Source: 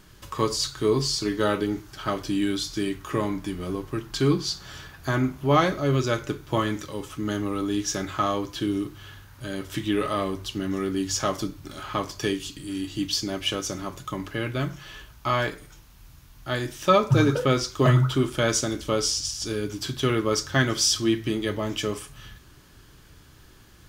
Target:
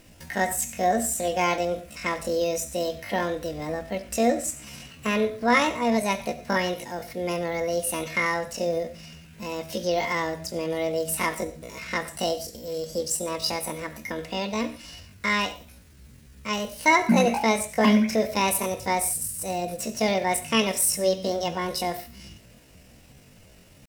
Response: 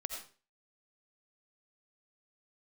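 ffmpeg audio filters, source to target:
-filter_complex "[0:a]asetrate=74167,aresample=44100,atempo=0.594604,asplit=2[s0][s1];[1:a]atrim=start_sample=2205,atrim=end_sample=6615[s2];[s1][s2]afir=irnorm=-1:irlink=0,volume=0.376[s3];[s0][s3]amix=inputs=2:normalize=0,volume=0.75"

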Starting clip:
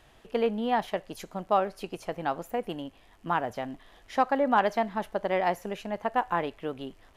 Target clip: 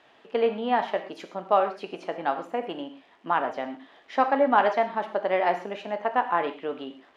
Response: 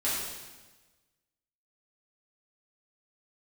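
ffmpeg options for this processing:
-filter_complex "[0:a]highpass=290,lowpass=3800,asplit=2[s0][s1];[1:a]atrim=start_sample=2205,atrim=end_sample=6174[s2];[s1][s2]afir=irnorm=-1:irlink=0,volume=0.251[s3];[s0][s3]amix=inputs=2:normalize=0,volume=1.12"

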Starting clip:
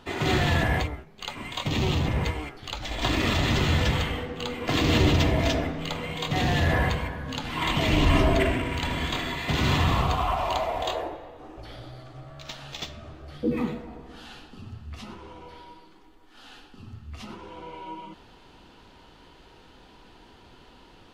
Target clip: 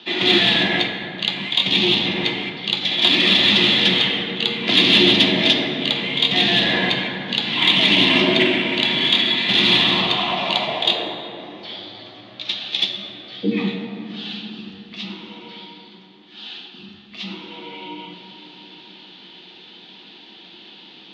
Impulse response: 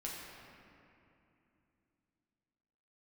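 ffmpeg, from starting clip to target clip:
-filter_complex "[0:a]highpass=f=180:w=0.5412,highpass=f=180:w=1.3066,equalizer=f=210:t=q:w=4:g=9,equalizer=f=360:t=q:w=4:g=9,equalizer=f=810:t=q:w=4:g=3,equalizer=f=1600:t=q:w=4:g=3,equalizer=f=3600:t=q:w=4:g=7,lowpass=f=4100:w=0.5412,lowpass=f=4100:w=1.3066,aexciter=amount=4.4:drive=7.1:freq=2100,asplit=2[s0][s1];[1:a]atrim=start_sample=2205,asetrate=34398,aresample=44100,lowpass=8300[s2];[s1][s2]afir=irnorm=-1:irlink=0,volume=0.794[s3];[s0][s3]amix=inputs=2:normalize=0,afreqshift=-19,volume=0.596"

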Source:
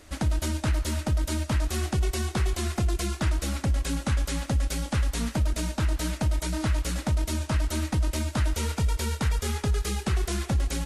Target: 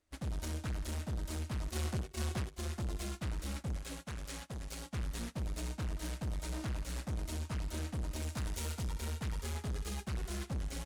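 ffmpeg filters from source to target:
-filter_complex "[0:a]asettb=1/sr,asplit=3[s0][s1][s2];[s0]atrim=end=8.224[s3];[s1]atrim=start=8.22:end=8.85,asetpts=PTS-STARTPTS,afade=t=in:d=0.004:c=qsin,afade=t=out:st=0.626:d=0.004:c=qsin,highshelf=f=4000:g=6[s4];[s2]atrim=start=8.846[s5];[s3][s4]acrossfade=d=0.004:c1=hsin:c2=qsin[s6];[s6][s5]acrossfade=d=0.004:c1=qsin:c2=hsin,aecho=1:1:63|126|189:0.316|0.0949|0.0285,acompressor=threshold=0.0631:ratio=10,asoftclip=type=tanh:threshold=0.0251,asettb=1/sr,asplit=3[s7][s8][s9];[s7]atrim=end=1.694[s10];[s8]atrim=start=1.69:end=2.55,asetpts=PTS-STARTPTS,afade=t=in:d=0.004:c=qsin,afade=t=out:st=0.856:d=0.004:c=qsin,highpass=f=57:w=0.5412,highpass=f=57:w=1.3066[s11];[s9]atrim=start=2.546[s12];[s10][s11]acrossfade=d=0.004:c1=hsin:c2=qsin[s13];[s13][s12]acrossfade=d=0.004:c1=qsin:c2=hsin,agate=range=0.0282:threshold=0.0178:ratio=16:detection=peak,asettb=1/sr,asplit=3[s14][s15][s16];[s14]atrim=end=3.784[s17];[s15]atrim=start=3.78:end=4.91,asetpts=PTS-STARTPTS,afade=t=in:d=0.004:c=qsin,afade=t=out:st=1.126:d=0.004:c=qsin,lowshelf=f=340:g=-6[s18];[s16]atrim=start=4.906[s19];[s17][s18]acrossfade=d=0.004:c1=hsin:c2=qsin[s20];[s20][s19]acrossfade=d=0.004:c1=qsin:c2=hsin,volume=1.12"

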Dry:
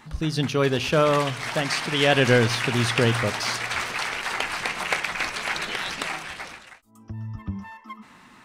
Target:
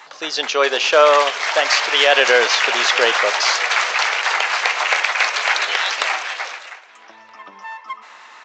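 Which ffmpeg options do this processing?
-filter_complex "[0:a]highpass=f=510:w=0.5412,highpass=f=510:w=1.3066,asplit=2[s0][s1];[s1]adelay=636,lowpass=f=4200:p=1,volume=0.0708,asplit=2[s2][s3];[s3]adelay=636,lowpass=f=4200:p=1,volume=0.5,asplit=2[s4][s5];[s5]adelay=636,lowpass=f=4200:p=1,volume=0.5[s6];[s2][s4][s6]amix=inputs=3:normalize=0[s7];[s0][s7]amix=inputs=2:normalize=0,aresample=16000,aresample=44100,alimiter=level_in=3.55:limit=0.891:release=50:level=0:latency=1,volume=0.891"

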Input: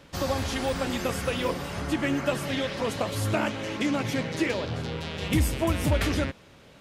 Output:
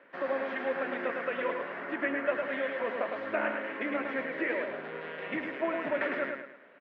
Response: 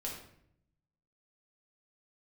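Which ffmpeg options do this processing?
-af "highpass=f=310:w=0.5412,highpass=f=310:w=1.3066,equalizer=f=310:t=q:w=4:g=-7,equalizer=f=450:t=q:w=4:g=-5,equalizer=f=830:t=q:w=4:g=-8,equalizer=f=1200:t=q:w=4:g=-4,equalizer=f=1800:t=q:w=4:g=4,lowpass=f=2000:w=0.5412,lowpass=f=2000:w=1.3066,aecho=1:1:107|214|321|428:0.562|0.197|0.0689|0.0241"

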